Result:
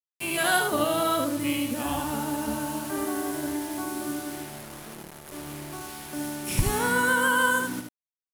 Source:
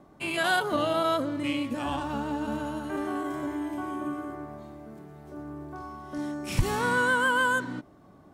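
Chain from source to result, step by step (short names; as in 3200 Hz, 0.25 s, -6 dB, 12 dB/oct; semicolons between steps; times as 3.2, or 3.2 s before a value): bit-crush 7-bit; bell 11000 Hz +12 dB 0.77 oct; echo 76 ms -5 dB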